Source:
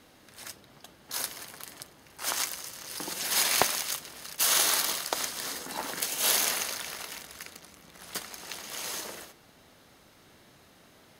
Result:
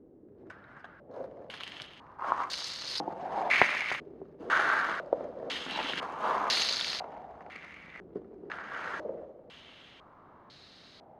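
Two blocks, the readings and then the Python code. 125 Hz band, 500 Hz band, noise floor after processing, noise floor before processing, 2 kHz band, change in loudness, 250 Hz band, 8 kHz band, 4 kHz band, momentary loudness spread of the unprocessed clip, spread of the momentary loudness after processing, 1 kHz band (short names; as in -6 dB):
-0.5 dB, +3.0 dB, -56 dBFS, -58 dBFS, +4.5 dB, -2.5 dB, +0.5 dB, -18.0 dB, -4.0 dB, 20 LU, 21 LU, +4.0 dB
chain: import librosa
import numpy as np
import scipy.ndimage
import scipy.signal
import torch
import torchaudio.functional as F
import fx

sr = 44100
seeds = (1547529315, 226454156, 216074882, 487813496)

y = fx.echo_feedback(x, sr, ms=300, feedback_pct=55, wet_db=-16)
y = fx.filter_held_lowpass(y, sr, hz=2.0, low_hz=390.0, high_hz=4300.0)
y = y * librosa.db_to_amplitude(-1.0)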